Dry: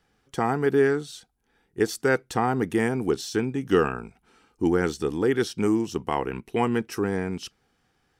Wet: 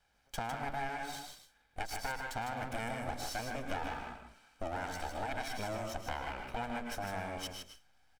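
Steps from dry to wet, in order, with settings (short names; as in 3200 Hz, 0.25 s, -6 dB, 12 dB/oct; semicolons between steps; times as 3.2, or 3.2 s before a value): minimum comb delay 1.3 ms; bell 170 Hz -8.5 dB 1.9 oct; reverb RT60 0.30 s, pre-delay 0.1 s, DRR 7.5 dB; in parallel at -6 dB: backlash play -43 dBFS; on the sum: compressor 6:1, threshold -33 dBFS, peak gain reduction 16.5 dB; on a send: echo 0.154 s -6 dB; on the sum: gain -3 dB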